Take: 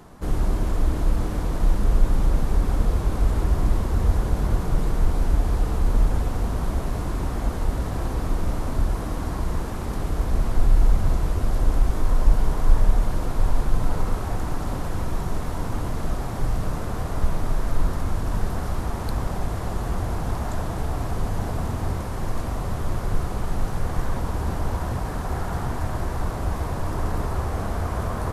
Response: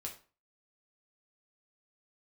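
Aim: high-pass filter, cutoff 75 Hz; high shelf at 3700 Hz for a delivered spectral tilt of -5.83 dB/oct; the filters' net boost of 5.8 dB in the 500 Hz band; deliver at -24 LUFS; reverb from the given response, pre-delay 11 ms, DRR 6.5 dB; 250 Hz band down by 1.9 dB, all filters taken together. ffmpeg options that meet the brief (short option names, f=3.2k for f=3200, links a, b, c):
-filter_complex "[0:a]highpass=75,equalizer=f=250:t=o:g=-5.5,equalizer=f=500:t=o:g=9,highshelf=f=3.7k:g=-8.5,asplit=2[a][b];[1:a]atrim=start_sample=2205,adelay=11[c];[b][c]afir=irnorm=-1:irlink=0,volume=-4.5dB[d];[a][d]amix=inputs=2:normalize=0,volume=4dB"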